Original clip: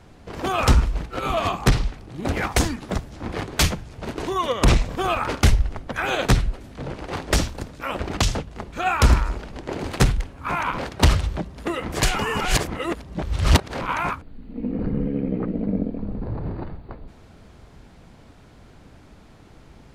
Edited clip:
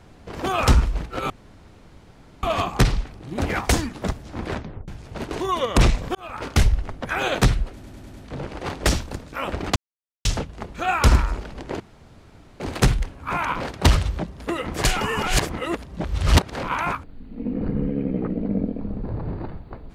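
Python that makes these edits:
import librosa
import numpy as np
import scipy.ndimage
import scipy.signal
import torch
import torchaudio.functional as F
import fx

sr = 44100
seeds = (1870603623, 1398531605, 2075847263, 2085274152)

y = fx.edit(x, sr, fx.insert_room_tone(at_s=1.3, length_s=1.13),
    fx.tape_stop(start_s=3.34, length_s=0.41),
    fx.fade_in_span(start_s=5.02, length_s=0.52),
    fx.stutter(start_s=6.6, slice_s=0.1, count=5),
    fx.insert_silence(at_s=8.23, length_s=0.49),
    fx.insert_room_tone(at_s=9.78, length_s=0.8), tone=tone)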